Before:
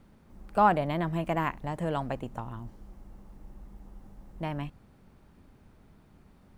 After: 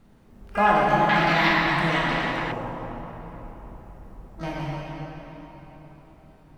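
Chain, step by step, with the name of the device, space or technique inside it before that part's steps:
reverb reduction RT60 1.8 s
shimmer-style reverb (pitch-shifted copies added +12 semitones −9 dB; convolution reverb RT60 4.3 s, pre-delay 18 ms, DRR −6 dB)
0:01.09–0:02.52: octave-band graphic EQ 250/500/2,000/4,000 Hz +4/−4/+9/+12 dB

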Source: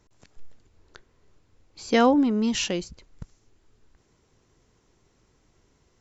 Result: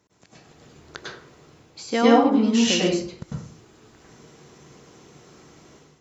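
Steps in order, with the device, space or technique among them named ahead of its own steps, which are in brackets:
far laptop microphone (convolution reverb RT60 0.50 s, pre-delay 95 ms, DRR −4.5 dB; high-pass filter 130 Hz 12 dB per octave; automatic gain control gain up to 12 dB)
level −1 dB

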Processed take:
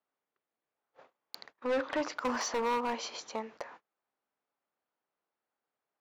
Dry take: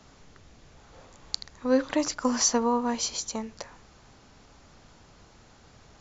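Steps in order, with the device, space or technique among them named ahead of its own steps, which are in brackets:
walkie-talkie (band-pass filter 420–2,500 Hz; hard clipping −28.5 dBFS, distortion −6 dB; noise gate −52 dBFS, range −32 dB)
0:01.54–0:02.10: low-pass filter 6,900 Hz 12 dB per octave
level +1.5 dB

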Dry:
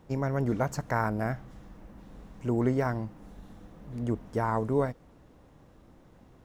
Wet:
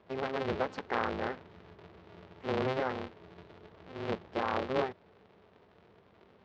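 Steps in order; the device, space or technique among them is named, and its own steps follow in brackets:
ring modulator pedal into a guitar cabinet (ring modulator with a square carrier 130 Hz; loudspeaker in its box 100–3,900 Hz, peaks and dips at 140 Hz −8 dB, 280 Hz −8 dB, 430 Hz +4 dB)
high-shelf EQ 6,700 Hz +6 dB
level −3.5 dB

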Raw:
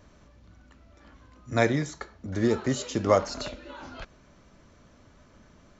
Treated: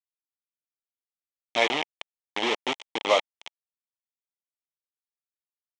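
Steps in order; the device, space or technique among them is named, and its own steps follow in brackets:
hand-held game console (bit reduction 4 bits; loudspeaker in its box 470–5,800 Hz, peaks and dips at 870 Hz +5 dB, 1,500 Hz −10 dB, 2,200 Hz +7 dB, 3,200 Hz +10 dB, 4,700 Hz −7 dB)

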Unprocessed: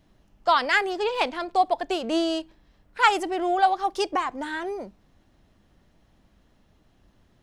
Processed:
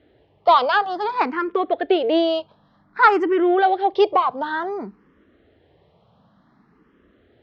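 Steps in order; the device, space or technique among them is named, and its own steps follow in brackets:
barber-pole phaser into a guitar amplifier (frequency shifter mixed with the dry sound +0.55 Hz; soft clipping −15.5 dBFS, distortion −16 dB; loudspeaker in its box 110–3,900 Hz, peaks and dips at 440 Hz +7 dB, 1,200 Hz +4 dB, 2,600 Hz −5 dB)
high-shelf EQ 5,600 Hz −6 dB
level +9 dB

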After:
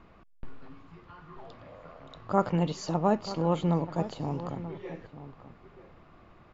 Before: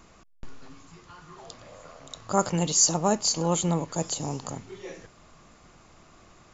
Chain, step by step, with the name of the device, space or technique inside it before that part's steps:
shout across a valley (high-frequency loss of the air 370 metres; slap from a distant wall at 160 metres, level −13 dB)

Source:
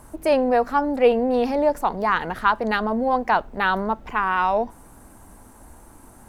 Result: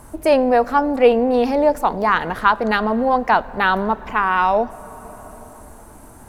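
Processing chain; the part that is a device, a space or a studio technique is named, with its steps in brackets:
compressed reverb return (on a send at −8.5 dB: convolution reverb RT60 2.9 s, pre-delay 3 ms + downward compressor, threshold −29 dBFS, peak gain reduction 16.5 dB)
on the sum: level +4 dB

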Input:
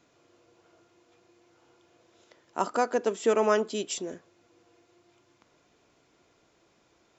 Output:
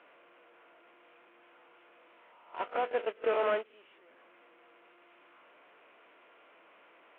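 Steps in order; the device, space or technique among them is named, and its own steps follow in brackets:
peak hold with a rise ahead of every peak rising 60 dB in 0.58 s
digital answering machine (band-pass filter 370–3,300 Hz; linear delta modulator 16 kbit/s, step −30.5 dBFS; loudspeaker in its box 390–3,300 Hz, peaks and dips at 390 Hz −5 dB, 790 Hz −4 dB, 1,800 Hz −3 dB)
noise gate −29 dBFS, range −21 dB
dynamic equaliser 1,100 Hz, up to −5 dB, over −46 dBFS, Q 2

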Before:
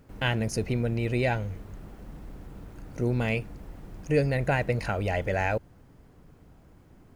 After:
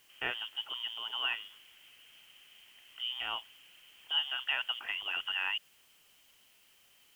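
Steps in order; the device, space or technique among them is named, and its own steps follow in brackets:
scrambled radio voice (band-pass filter 360–2,800 Hz; voice inversion scrambler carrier 3,400 Hz; white noise bed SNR 27 dB)
level −5.5 dB

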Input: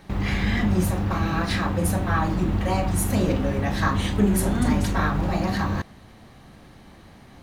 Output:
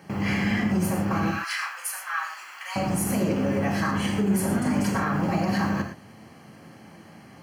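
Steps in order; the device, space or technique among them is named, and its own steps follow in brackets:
0:01.31–0:02.76: high-pass filter 1,200 Hz 24 dB per octave
PA system with an anti-feedback notch (high-pass filter 110 Hz 24 dB per octave; Butterworth band-reject 3,700 Hz, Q 4.5; brickwall limiter −17.5 dBFS, peak gain reduction 7.5 dB)
reverb whose tail is shaped and stops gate 140 ms flat, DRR 4.5 dB

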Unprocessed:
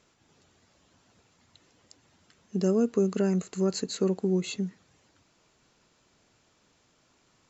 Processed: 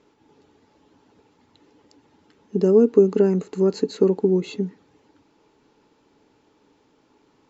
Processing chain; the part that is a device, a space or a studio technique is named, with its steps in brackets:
inside a cardboard box (low-pass filter 4,900 Hz 12 dB per octave; hollow resonant body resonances 300/420/850 Hz, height 14 dB, ringing for 40 ms)

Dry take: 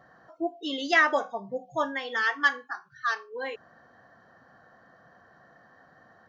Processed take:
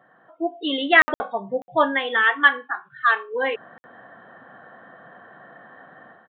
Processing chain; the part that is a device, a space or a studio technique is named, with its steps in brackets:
call with lost packets (high-pass filter 170 Hz 12 dB per octave; downsampling to 8,000 Hz; automatic gain control gain up to 11 dB; dropped packets of 60 ms random)

